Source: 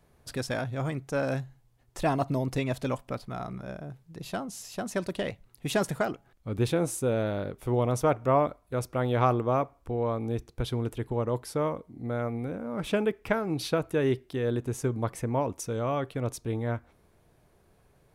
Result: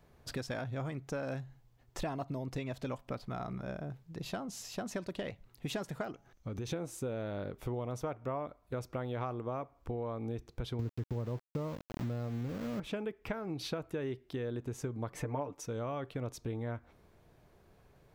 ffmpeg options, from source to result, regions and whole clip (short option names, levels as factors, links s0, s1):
-filter_complex "[0:a]asettb=1/sr,asplit=3[s0][s1][s2];[s0]atrim=end=6.114[s3];[s1]atrim=start=6.11:end=6.72,asetpts=PTS-STARTPTS,afade=t=in:d=0.004:c=qsin,afade=t=out:st=0.606:d=0.004:c=qsin,equalizer=f=6100:t=o:w=0.23:g=13,acompressor=threshold=0.02:ratio=5:attack=3.2:release=140:knee=1:detection=peak[s4];[s2]atrim=start=6.716[s5];[s3][s4]acrossfade=d=0.004:c1=hsin:c2=qsin[s6];[s6][s5]acrossfade=d=0.004:c1=qsin:c2=hsin,asettb=1/sr,asplit=3[s7][s8][s9];[s7]atrim=end=10.794[s10];[s8]atrim=start=10.79:end=12.8,asetpts=PTS-STARTPTS,afade=t=in:d=0.004:c=qsin,afade=t=out:st=2.006:d=0.004:c=qsin,highpass=72,aemphasis=mode=reproduction:type=riaa,aeval=exprs='val(0)*gte(abs(val(0)),0.0237)':c=same[s11];[s9]atrim=start=12.796[s12];[s10][s11]acrossfade=d=0.004:c1=hsin:c2=qsin[s13];[s13][s12]acrossfade=d=0.004:c1=qsin:c2=hsin,asettb=1/sr,asplit=3[s14][s15][s16];[s14]atrim=end=15.144[s17];[s15]atrim=start=15.14:end=15.66,asetpts=PTS-STARTPTS,afade=t=in:d=0.004:c=qsin,afade=t=out:st=0.516:d=0.004:c=qsin,equalizer=f=860:w=0.37:g=5.5,aecho=1:1:6.8:0.74,atrim=end_sample=22932[s18];[s16]atrim=start=15.656[s19];[s17][s18]acrossfade=d=0.004:c1=hsin:c2=qsin[s20];[s20][s19]acrossfade=d=0.004:c1=qsin:c2=hsin,equalizer=f=10000:w=1.6:g=-9,acompressor=threshold=0.0178:ratio=6"